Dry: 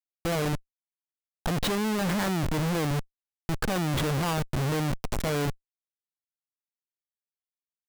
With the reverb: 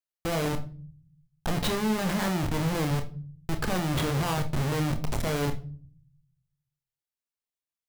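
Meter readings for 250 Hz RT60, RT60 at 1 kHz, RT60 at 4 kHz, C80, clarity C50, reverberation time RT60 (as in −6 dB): 0.95 s, 0.35 s, 0.30 s, 18.5 dB, 14.0 dB, 0.45 s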